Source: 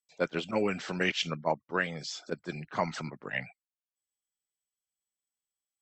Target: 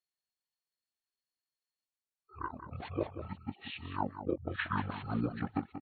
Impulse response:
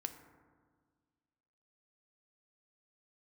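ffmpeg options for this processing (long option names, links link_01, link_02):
-af "areverse,asetrate=24046,aresample=44100,atempo=1.83401,aecho=1:1:184:0.299,volume=-4.5dB"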